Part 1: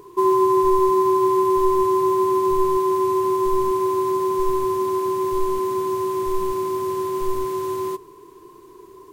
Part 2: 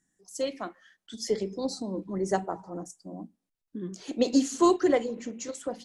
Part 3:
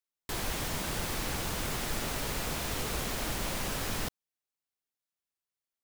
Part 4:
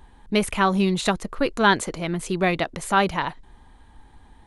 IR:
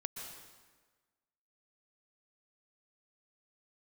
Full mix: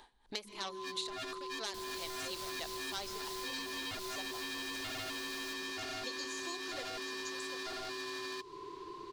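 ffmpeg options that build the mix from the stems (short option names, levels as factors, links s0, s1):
-filter_complex "[0:a]lowpass=4000,adelay=450,volume=1.33[s0];[1:a]adelay=1850,volume=0.398[s1];[2:a]adelay=1450,volume=0.447,asplit=2[s2][s3];[s3]volume=0.422[s4];[3:a]asubboost=boost=3:cutoff=50,aeval=exprs='0.668*sin(PI/2*3.55*val(0)/0.668)':c=same,aeval=exprs='val(0)*pow(10,-22*(0.5-0.5*cos(2*PI*3*n/s))/20)':c=same,volume=0.141,asplit=3[s5][s6][s7];[s6]volume=0.2[s8];[s7]apad=whole_len=422398[s9];[s0][s9]sidechaincompress=threshold=0.00398:ratio=10:attack=23:release=170[s10];[s1][s5]amix=inputs=2:normalize=0,highpass=350,alimiter=limit=0.106:level=0:latency=1:release=455,volume=1[s11];[s10][s2]amix=inputs=2:normalize=0,aeval=exprs='0.0794*(abs(mod(val(0)/0.0794+3,4)-2)-1)':c=same,acompressor=threshold=0.0355:ratio=6,volume=1[s12];[4:a]atrim=start_sample=2205[s13];[s4][s8]amix=inputs=2:normalize=0[s14];[s14][s13]afir=irnorm=-1:irlink=0[s15];[s11][s12][s15]amix=inputs=3:normalize=0,equalizer=f=4300:t=o:w=0.83:g=9.5,acrossover=split=660|3600[s16][s17][s18];[s16]acompressor=threshold=0.00355:ratio=4[s19];[s17]acompressor=threshold=0.00447:ratio=4[s20];[s18]acompressor=threshold=0.00708:ratio=4[s21];[s19][s20][s21]amix=inputs=3:normalize=0"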